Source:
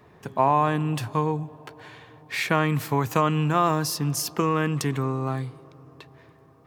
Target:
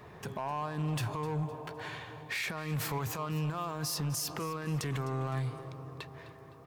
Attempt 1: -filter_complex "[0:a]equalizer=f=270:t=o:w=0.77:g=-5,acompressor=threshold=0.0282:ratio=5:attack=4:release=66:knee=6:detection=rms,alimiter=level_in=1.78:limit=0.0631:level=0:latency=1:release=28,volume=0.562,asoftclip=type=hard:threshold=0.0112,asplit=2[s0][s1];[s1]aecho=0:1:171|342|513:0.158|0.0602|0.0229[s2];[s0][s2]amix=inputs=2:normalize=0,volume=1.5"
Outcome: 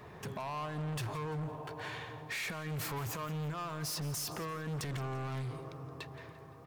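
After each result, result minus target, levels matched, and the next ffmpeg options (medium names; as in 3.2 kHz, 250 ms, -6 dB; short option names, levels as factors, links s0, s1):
hard clipper: distortion +10 dB; echo 85 ms early
-filter_complex "[0:a]equalizer=f=270:t=o:w=0.77:g=-5,acompressor=threshold=0.0282:ratio=5:attack=4:release=66:knee=6:detection=rms,alimiter=level_in=1.78:limit=0.0631:level=0:latency=1:release=28,volume=0.562,asoftclip=type=hard:threshold=0.0237,asplit=2[s0][s1];[s1]aecho=0:1:171|342|513:0.158|0.0602|0.0229[s2];[s0][s2]amix=inputs=2:normalize=0,volume=1.5"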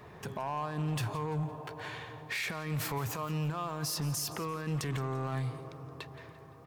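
echo 85 ms early
-filter_complex "[0:a]equalizer=f=270:t=o:w=0.77:g=-5,acompressor=threshold=0.0282:ratio=5:attack=4:release=66:knee=6:detection=rms,alimiter=level_in=1.78:limit=0.0631:level=0:latency=1:release=28,volume=0.562,asoftclip=type=hard:threshold=0.0237,asplit=2[s0][s1];[s1]aecho=0:1:256|512|768:0.158|0.0602|0.0229[s2];[s0][s2]amix=inputs=2:normalize=0,volume=1.5"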